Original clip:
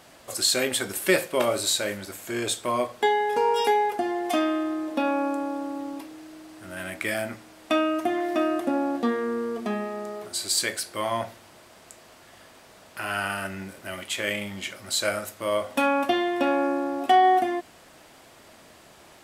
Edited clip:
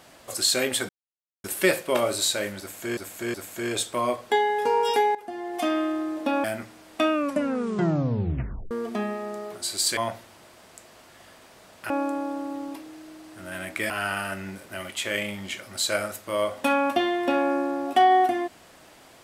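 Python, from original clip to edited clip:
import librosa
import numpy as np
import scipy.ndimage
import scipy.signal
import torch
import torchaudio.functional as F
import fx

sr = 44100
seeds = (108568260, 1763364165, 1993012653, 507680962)

y = fx.edit(x, sr, fx.insert_silence(at_s=0.89, length_s=0.55),
    fx.repeat(start_s=2.05, length_s=0.37, count=3),
    fx.fade_in_from(start_s=3.86, length_s=0.64, floor_db=-17.0),
    fx.move(start_s=5.15, length_s=2.0, to_s=13.03),
    fx.tape_stop(start_s=7.83, length_s=1.59),
    fx.cut(start_s=10.68, length_s=0.42), tone=tone)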